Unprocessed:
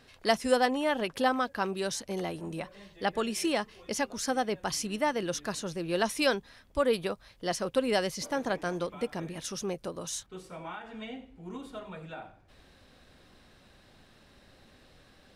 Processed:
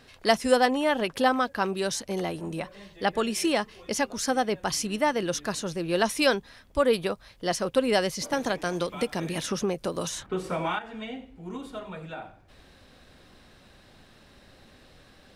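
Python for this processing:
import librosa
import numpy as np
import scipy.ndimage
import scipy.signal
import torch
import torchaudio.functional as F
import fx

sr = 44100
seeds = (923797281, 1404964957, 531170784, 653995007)

y = fx.band_squash(x, sr, depth_pct=100, at=(8.33, 10.79))
y = F.gain(torch.from_numpy(y), 4.0).numpy()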